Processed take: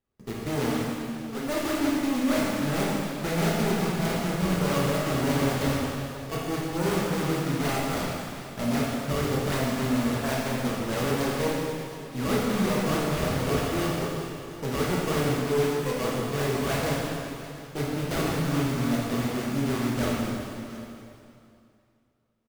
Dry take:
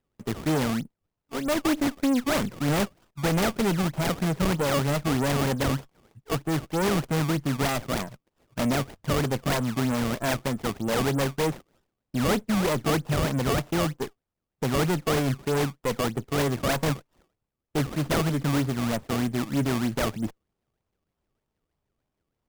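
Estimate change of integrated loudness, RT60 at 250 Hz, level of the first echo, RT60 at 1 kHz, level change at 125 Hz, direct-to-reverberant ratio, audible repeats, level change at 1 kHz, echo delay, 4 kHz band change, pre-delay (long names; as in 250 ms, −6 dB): −1.0 dB, 2.6 s, −18.0 dB, 2.8 s, −1.5 dB, −6.0 dB, 1, −0.5 dB, 718 ms, −1.0 dB, 5 ms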